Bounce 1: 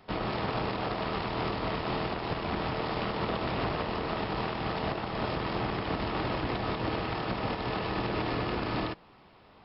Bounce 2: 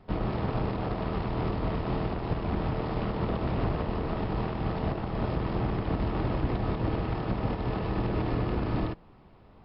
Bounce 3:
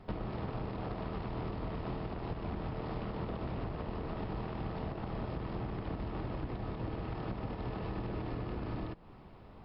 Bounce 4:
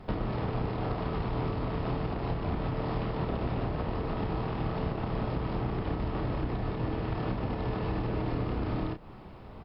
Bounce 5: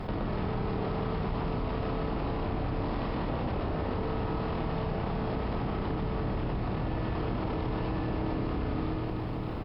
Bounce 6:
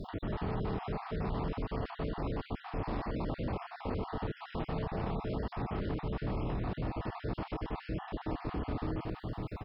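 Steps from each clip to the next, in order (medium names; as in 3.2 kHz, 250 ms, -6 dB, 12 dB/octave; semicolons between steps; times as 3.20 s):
tilt EQ -3 dB/octave; trim -3 dB
compression 6:1, threshold -37 dBFS, peak gain reduction 14.5 dB; trim +1.5 dB
doubling 32 ms -7 dB; trim +6 dB
on a send: reverse bouncing-ball echo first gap 120 ms, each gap 1.5×, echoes 5; on the sum: level flattener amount 70%; trim -4 dB
random holes in the spectrogram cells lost 33%; trim -3 dB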